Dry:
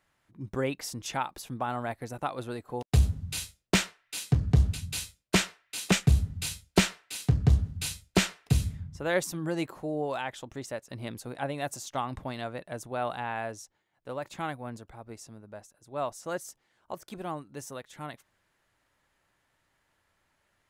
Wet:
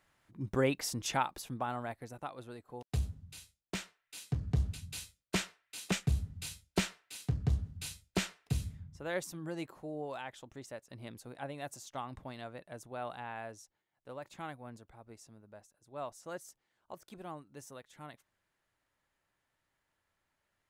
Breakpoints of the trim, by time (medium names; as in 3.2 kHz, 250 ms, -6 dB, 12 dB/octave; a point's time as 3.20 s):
1.09 s +0.5 dB
2.38 s -11 dB
2.96 s -11 dB
3.44 s -17.5 dB
4.48 s -9 dB